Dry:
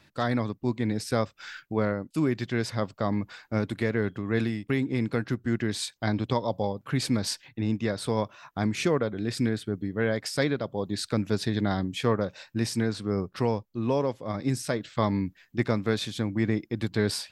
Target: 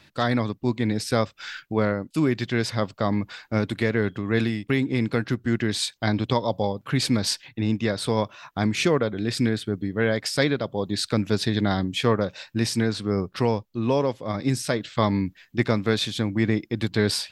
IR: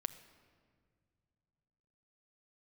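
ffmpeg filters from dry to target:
-af "equalizer=frequency=3400:width_type=o:width=1.4:gain=4,volume=3.5dB"

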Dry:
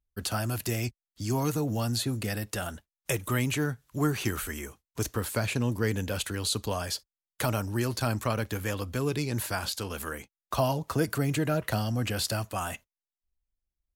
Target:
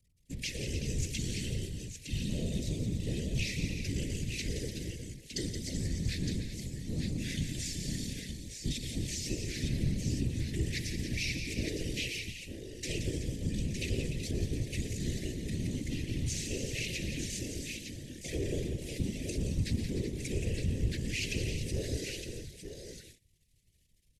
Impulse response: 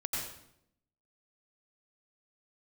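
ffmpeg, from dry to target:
-filter_complex "[0:a]aeval=exprs='val(0)+0.5*0.0224*sgn(val(0))':channel_layout=same,agate=range=-24dB:threshold=-36dB:ratio=16:detection=peak,acrossover=split=130[link_01][link_02];[link_02]acompressor=threshold=-27dB:ratio=6[link_03];[link_01][link_03]amix=inputs=2:normalize=0,aecho=1:1:67|100|172|218|526:0.237|0.398|0.282|0.266|0.473,asetrate=25442,aresample=44100,asuperstop=centerf=1000:order=12:qfactor=0.74,afftfilt=real='hypot(re,im)*cos(2*PI*random(0))':imag='hypot(re,im)*sin(2*PI*random(1))':win_size=512:overlap=0.75"

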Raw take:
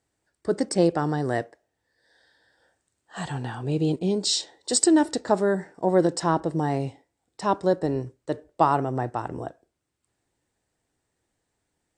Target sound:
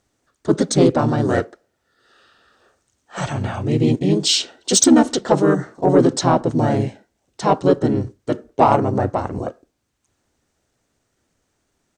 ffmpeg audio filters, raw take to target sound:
ffmpeg -i in.wav -filter_complex "[0:a]asplit=3[link_01][link_02][link_03];[link_02]asetrate=33038,aresample=44100,atempo=1.33484,volume=-3dB[link_04];[link_03]asetrate=35002,aresample=44100,atempo=1.25992,volume=-1dB[link_05];[link_01][link_04][link_05]amix=inputs=3:normalize=0,acontrast=35,volume=-1dB" out.wav

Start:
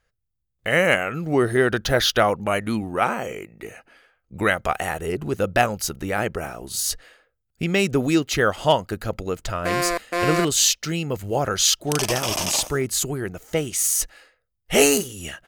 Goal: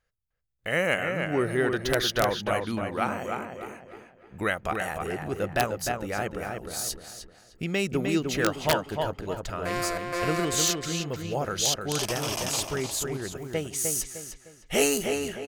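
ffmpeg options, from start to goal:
ffmpeg -i in.wav -filter_complex "[0:a]asplit=2[link_01][link_02];[link_02]adelay=305,lowpass=frequency=3200:poles=1,volume=-4.5dB,asplit=2[link_03][link_04];[link_04]adelay=305,lowpass=frequency=3200:poles=1,volume=0.37,asplit=2[link_05][link_06];[link_06]adelay=305,lowpass=frequency=3200:poles=1,volume=0.37,asplit=2[link_07][link_08];[link_08]adelay=305,lowpass=frequency=3200:poles=1,volume=0.37,asplit=2[link_09][link_10];[link_10]adelay=305,lowpass=frequency=3200:poles=1,volume=0.37[link_11];[link_01][link_03][link_05][link_07][link_09][link_11]amix=inputs=6:normalize=0,aeval=exprs='(mod(1.88*val(0)+1,2)-1)/1.88':channel_layout=same,volume=-7dB" out.wav

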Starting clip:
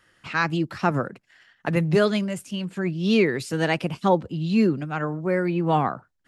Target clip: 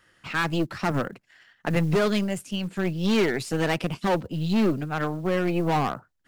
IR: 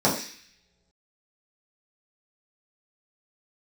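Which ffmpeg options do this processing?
-af "aeval=exprs='0.473*(cos(1*acos(clip(val(0)/0.473,-1,1)))-cos(1*PI/2))+0.0376*(cos(4*acos(clip(val(0)/0.473,-1,1)))-cos(4*PI/2))+0.00266*(cos(6*acos(clip(val(0)/0.473,-1,1)))-cos(6*PI/2))+0.0266*(cos(8*acos(clip(val(0)/0.473,-1,1)))-cos(8*PI/2))':channel_layout=same,acrusher=bits=8:mode=log:mix=0:aa=0.000001,asoftclip=type=hard:threshold=-16.5dB"

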